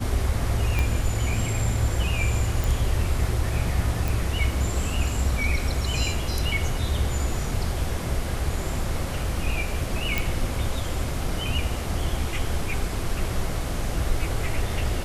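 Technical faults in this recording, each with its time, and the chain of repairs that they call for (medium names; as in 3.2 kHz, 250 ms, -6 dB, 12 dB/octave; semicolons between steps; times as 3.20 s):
0.79 s: pop -11 dBFS
2.64 s: pop
4.08 s: pop
10.18 s: pop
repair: de-click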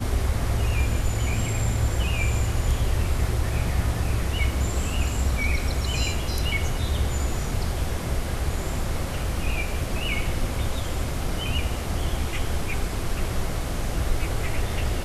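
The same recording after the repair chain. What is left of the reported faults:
0.79 s: pop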